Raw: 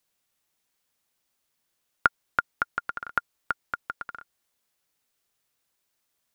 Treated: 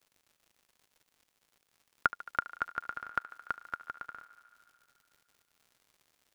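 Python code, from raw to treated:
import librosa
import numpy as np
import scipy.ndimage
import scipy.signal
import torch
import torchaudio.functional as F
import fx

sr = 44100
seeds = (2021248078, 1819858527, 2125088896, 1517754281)

y = fx.dmg_crackle(x, sr, seeds[0], per_s=150.0, level_db=-46.0)
y = fx.echo_thinned(y, sr, ms=73, feedback_pct=83, hz=260.0, wet_db=-17.0)
y = F.gain(torch.from_numpy(y), -6.5).numpy()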